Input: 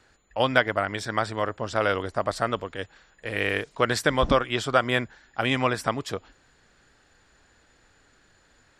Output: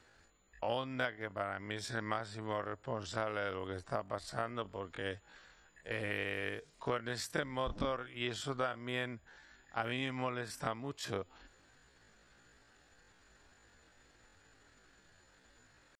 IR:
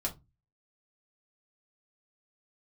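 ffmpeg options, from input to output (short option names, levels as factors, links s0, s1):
-af "acompressor=threshold=0.0316:ratio=5,atempo=0.55,volume=0.631"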